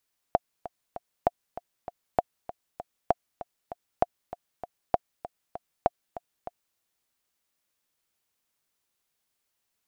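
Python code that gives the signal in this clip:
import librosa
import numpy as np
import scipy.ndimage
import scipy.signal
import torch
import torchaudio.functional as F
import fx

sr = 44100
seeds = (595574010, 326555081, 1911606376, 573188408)

y = fx.click_track(sr, bpm=196, beats=3, bars=7, hz=705.0, accent_db=15.5, level_db=-7.0)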